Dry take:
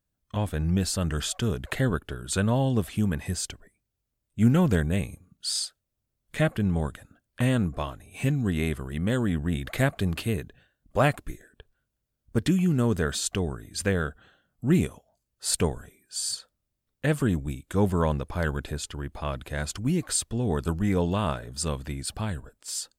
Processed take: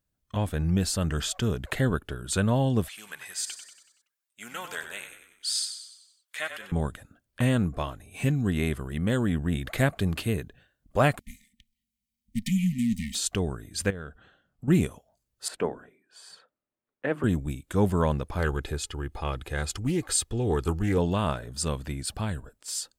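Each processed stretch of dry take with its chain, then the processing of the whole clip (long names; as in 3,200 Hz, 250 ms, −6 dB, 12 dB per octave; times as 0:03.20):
0:01.05–0:01.64: parametric band 10,000 Hz −6 dB 0.26 octaves + upward compression, threshold −33 dBFS
0:02.88–0:06.72: high-pass filter 1,200 Hz + echo with shifted repeats 94 ms, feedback 51%, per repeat −41 Hz, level −9 dB
0:11.19–0:13.15: lower of the sound and its delayed copy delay 1.3 ms + linear-phase brick-wall band-stop 260–1,800 Hz + low shelf with overshoot 170 Hz −7.5 dB, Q 3
0:13.90–0:14.68: high-shelf EQ 6,300 Hz −10 dB + downward compressor 3 to 1, threshold −37 dBFS
0:15.48–0:17.24: three-way crossover with the lows and the highs turned down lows −22 dB, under 210 Hz, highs −23 dB, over 2,500 Hz + mains-hum notches 50/100/150/200/250/300/350 Hz
0:18.38–0:20.98: comb filter 2.4 ms, depth 45% + highs frequency-modulated by the lows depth 0.17 ms
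whole clip: no processing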